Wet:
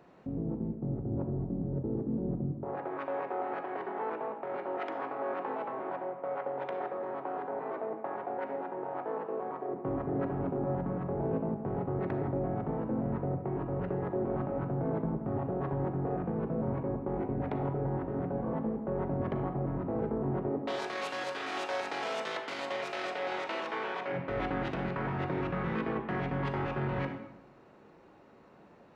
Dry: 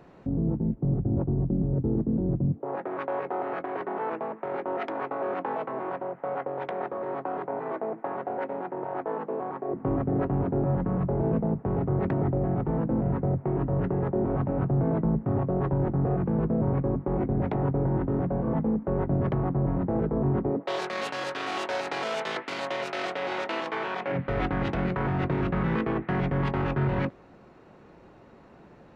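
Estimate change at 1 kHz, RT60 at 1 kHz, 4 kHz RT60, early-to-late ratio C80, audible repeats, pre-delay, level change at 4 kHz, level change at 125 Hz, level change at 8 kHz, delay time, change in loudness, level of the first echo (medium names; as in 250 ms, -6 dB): -4.0 dB, 0.95 s, 0.65 s, 9.5 dB, no echo, 33 ms, -4.5 dB, -8.5 dB, no reading, no echo, -6.0 dB, no echo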